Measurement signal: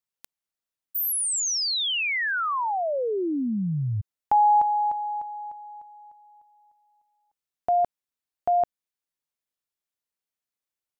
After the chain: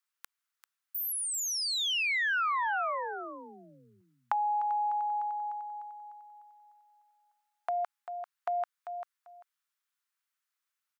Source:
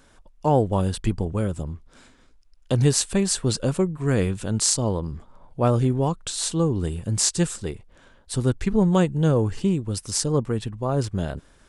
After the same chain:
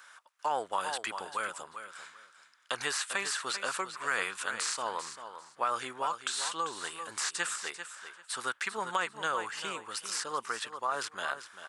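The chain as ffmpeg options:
ffmpeg -i in.wav -filter_complex "[0:a]acrossover=split=2800[link_01][link_02];[link_02]acompressor=threshold=-35dB:ratio=4:attack=1:release=60[link_03];[link_01][link_03]amix=inputs=2:normalize=0,highpass=frequency=1300:width_type=q:width=2.2,aecho=1:1:393|786:0.266|0.0506,acompressor=threshold=-33dB:ratio=6:attack=20:release=36:knee=6:detection=peak,volume=2dB" out.wav

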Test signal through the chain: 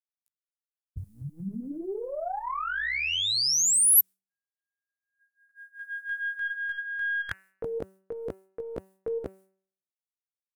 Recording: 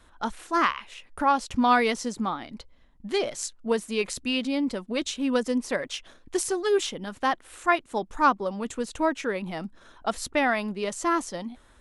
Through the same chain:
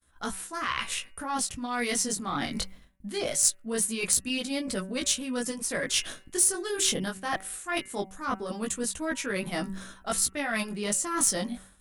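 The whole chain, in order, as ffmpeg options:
ffmpeg -i in.wav -af "flanger=delay=15.5:depth=5.9:speed=0.21,agate=range=-33dB:threshold=-51dB:ratio=3:detection=peak,dynaudnorm=framelen=120:gausssize=9:maxgain=10.5dB,equalizer=frequency=100:width_type=o:width=0.67:gain=-10,equalizer=frequency=1600:width_type=o:width=0.67:gain=4,equalizer=frequency=10000:width_type=o:width=0.67:gain=7,areverse,acompressor=threshold=-29dB:ratio=20,areverse,aeval=exprs='0.168*(cos(1*acos(clip(val(0)/0.168,-1,1)))-cos(1*PI/2))+0.0299*(cos(2*acos(clip(val(0)/0.168,-1,1)))-cos(2*PI/2))+0.00168*(cos(4*acos(clip(val(0)/0.168,-1,1)))-cos(4*PI/2))':channel_layout=same,equalizer=frequency=100:width_type=o:width=1.9:gain=13,bandreject=frequency=900:width=14,bandreject=frequency=190.9:width_type=h:width=4,bandreject=frequency=381.8:width_type=h:width=4,bandreject=frequency=572.7:width_type=h:width=4,bandreject=frequency=763.6:width_type=h:width=4,bandreject=frequency=954.5:width_type=h:width=4,bandreject=frequency=1145.4:width_type=h:width=4,bandreject=frequency=1336.3:width_type=h:width=4,bandreject=frequency=1527.2:width_type=h:width=4,bandreject=frequency=1718.1:width_type=h:width=4,bandreject=frequency=1909:width_type=h:width=4,bandreject=frequency=2099.9:width_type=h:width=4,bandreject=frequency=2290.8:width_type=h:width=4,bandreject=frequency=2481.7:width_type=h:width=4,bandreject=frequency=2672.6:width_type=h:width=4,bandreject=frequency=2863.5:width_type=h:width=4,afftfilt=real='re*lt(hypot(re,im),0.447)':imag='im*lt(hypot(re,im),0.447)':win_size=1024:overlap=0.75,crystalizer=i=2.5:c=0" out.wav

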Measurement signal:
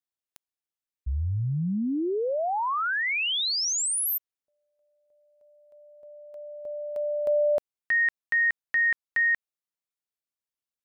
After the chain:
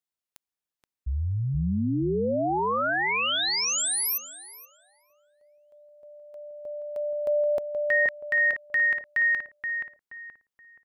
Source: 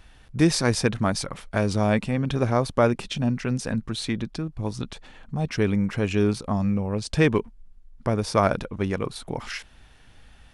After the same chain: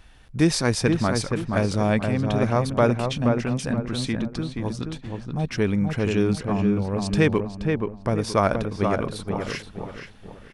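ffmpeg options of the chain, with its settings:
ffmpeg -i in.wav -filter_complex "[0:a]asplit=2[link_01][link_02];[link_02]adelay=476,lowpass=frequency=1800:poles=1,volume=-4dB,asplit=2[link_03][link_04];[link_04]adelay=476,lowpass=frequency=1800:poles=1,volume=0.37,asplit=2[link_05][link_06];[link_06]adelay=476,lowpass=frequency=1800:poles=1,volume=0.37,asplit=2[link_07][link_08];[link_08]adelay=476,lowpass=frequency=1800:poles=1,volume=0.37,asplit=2[link_09][link_10];[link_10]adelay=476,lowpass=frequency=1800:poles=1,volume=0.37[link_11];[link_01][link_03][link_05][link_07][link_09][link_11]amix=inputs=6:normalize=0" out.wav

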